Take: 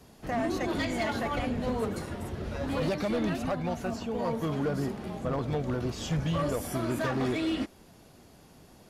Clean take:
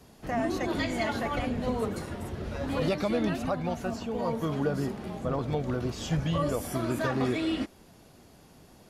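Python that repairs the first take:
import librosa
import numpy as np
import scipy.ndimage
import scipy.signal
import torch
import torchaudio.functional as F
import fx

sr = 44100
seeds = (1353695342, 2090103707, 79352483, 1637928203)

y = fx.fix_declip(x, sr, threshold_db=-24.0)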